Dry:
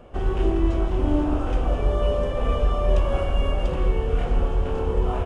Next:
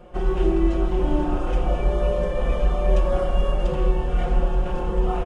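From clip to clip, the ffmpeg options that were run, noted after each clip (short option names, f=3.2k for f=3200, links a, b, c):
-af "aecho=1:1:5.6:0.98,volume=-2dB"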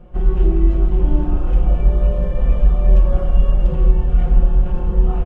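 -af "bass=f=250:g=13,treble=f=4k:g=-7,volume=-5dB"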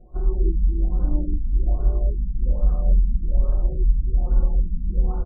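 -af "flanger=delay=2.8:depth=1.2:regen=-42:speed=0.52:shape=sinusoidal,afftfilt=real='re*lt(b*sr/1024,270*pow(1600/270,0.5+0.5*sin(2*PI*1.2*pts/sr)))':imag='im*lt(b*sr/1024,270*pow(1600/270,0.5+0.5*sin(2*PI*1.2*pts/sr)))':win_size=1024:overlap=0.75,volume=-3dB"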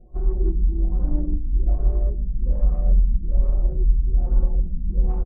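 -filter_complex "[0:a]adynamicsmooth=sensitivity=1.5:basefreq=940,asplit=2[a][b];[b]adelay=121,lowpass=f=810:p=1,volume=-16dB,asplit=2[c][d];[d]adelay=121,lowpass=f=810:p=1,volume=0.31,asplit=2[e][f];[f]adelay=121,lowpass=f=810:p=1,volume=0.31[g];[a][c][e][g]amix=inputs=4:normalize=0"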